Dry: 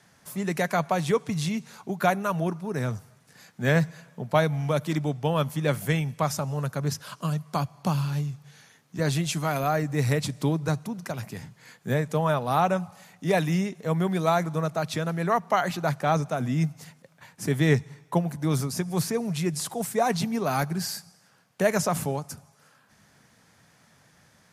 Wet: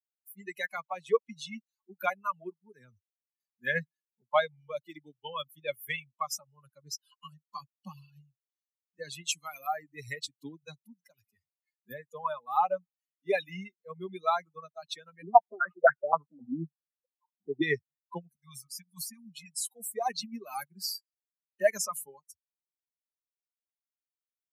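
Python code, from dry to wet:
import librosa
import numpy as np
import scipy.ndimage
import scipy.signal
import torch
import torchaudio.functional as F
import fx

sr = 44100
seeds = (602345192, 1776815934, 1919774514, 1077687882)

y = fx.filter_held_lowpass(x, sr, hz=7.7, low_hz=290.0, high_hz=1600.0, at=(15.22, 17.62))
y = fx.ellip_bandstop(y, sr, low_hz=240.0, high_hz=910.0, order=3, stop_db=40, at=(18.29, 19.69))
y = fx.bin_expand(y, sr, power=3.0)
y = scipy.signal.sosfilt(scipy.signal.butter(2, 450.0, 'highpass', fs=sr, output='sos'), y)
y = y * 10.0 ** (4.5 / 20.0)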